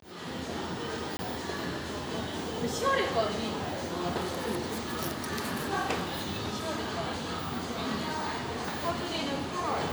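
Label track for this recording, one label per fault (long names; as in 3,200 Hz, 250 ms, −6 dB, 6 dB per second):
1.170000	1.190000	drop-out 20 ms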